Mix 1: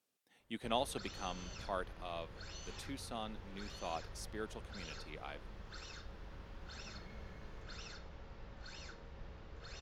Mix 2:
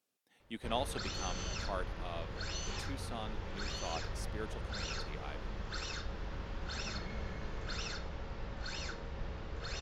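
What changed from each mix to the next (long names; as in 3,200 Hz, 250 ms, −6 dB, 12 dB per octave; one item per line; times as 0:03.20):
background +9.5 dB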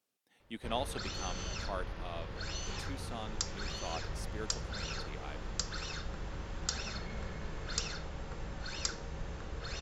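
second sound: unmuted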